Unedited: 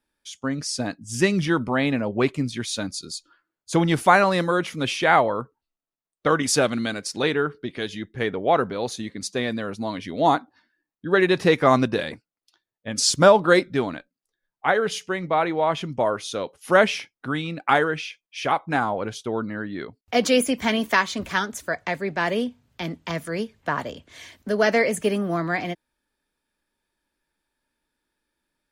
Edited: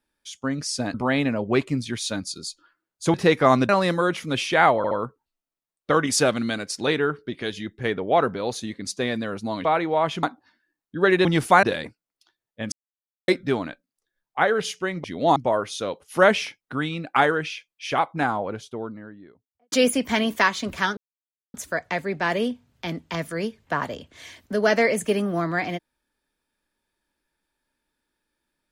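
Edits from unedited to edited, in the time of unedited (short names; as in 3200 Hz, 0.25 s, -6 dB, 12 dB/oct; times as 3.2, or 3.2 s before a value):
0.94–1.61 cut
3.81–4.19 swap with 11.35–11.9
5.27 stutter 0.07 s, 3 plays
10.01–10.33 swap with 15.31–15.89
12.99–13.55 mute
18.54–20.25 studio fade out
21.5 insert silence 0.57 s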